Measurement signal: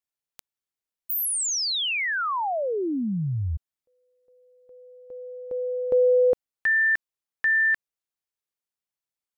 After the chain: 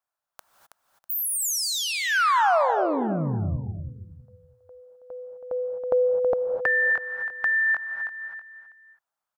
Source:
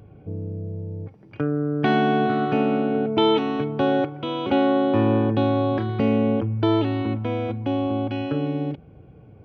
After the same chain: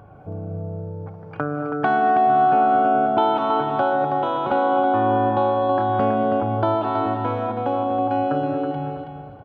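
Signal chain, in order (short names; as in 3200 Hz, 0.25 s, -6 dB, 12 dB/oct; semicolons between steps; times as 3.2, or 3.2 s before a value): band shelf 970 Hz +13.5 dB; non-linear reverb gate 0.28 s rising, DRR 7 dB; compressor 2:1, threshold -20 dBFS; feedback echo 0.324 s, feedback 26%, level -7.5 dB; dynamic EQ 2200 Hz, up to -3 dB, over -32 dBFS, Q 0.71; gain -1 dB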